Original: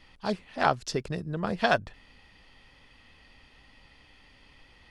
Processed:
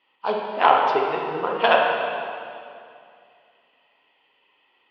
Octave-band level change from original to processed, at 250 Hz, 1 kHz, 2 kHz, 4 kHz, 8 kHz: −1.5 dB, +11.0 dB, +7.0 dB, +7.0 dB, below −15 dB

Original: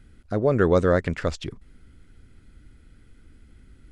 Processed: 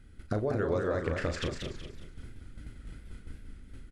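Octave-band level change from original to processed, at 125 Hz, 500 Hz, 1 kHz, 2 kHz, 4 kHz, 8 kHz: −7.5, −9.5, −9.0, −7.0, −1.5, −3.0 decibels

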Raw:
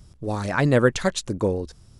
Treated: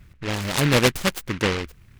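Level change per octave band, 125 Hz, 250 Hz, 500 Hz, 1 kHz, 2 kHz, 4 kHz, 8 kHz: 0.0, −0.5, −2.5, +0.5, +3.0, +9.0, +5.0 decibels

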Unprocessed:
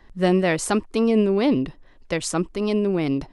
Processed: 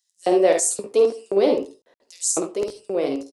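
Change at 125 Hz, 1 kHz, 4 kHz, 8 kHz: below −15 dB, +0.5 dB, −2.5 dB, +9.0 dB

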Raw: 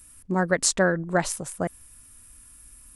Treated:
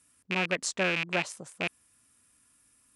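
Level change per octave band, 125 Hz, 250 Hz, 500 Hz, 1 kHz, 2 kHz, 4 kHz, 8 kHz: −10.0, −9.5, −9.0, −7.5, −1.5, −1.5, −11.0 decibels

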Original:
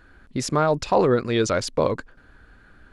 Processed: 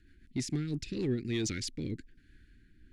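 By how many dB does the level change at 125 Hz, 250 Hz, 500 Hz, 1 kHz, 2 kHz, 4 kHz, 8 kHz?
−7.5, −8.0, −19.5, −34.5, −13.5, −8.5, −7.5 decibels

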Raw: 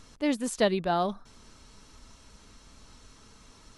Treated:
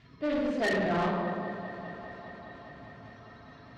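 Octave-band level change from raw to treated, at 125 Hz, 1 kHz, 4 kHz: +2.5, −1.0, −4.5 decibels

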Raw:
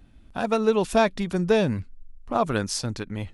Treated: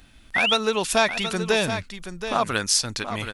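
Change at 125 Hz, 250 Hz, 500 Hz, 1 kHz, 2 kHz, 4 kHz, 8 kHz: −4.0, −4.0, −2.0, +2.0, +8.5, +11.5, +9.5 decibels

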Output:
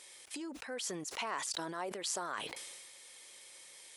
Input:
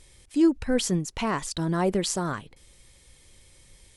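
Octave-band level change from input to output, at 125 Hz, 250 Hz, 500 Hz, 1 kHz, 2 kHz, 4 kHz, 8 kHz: −25.0, −21.5, −15.0, −8.5, −6.5, −6.5, −6.0 decibels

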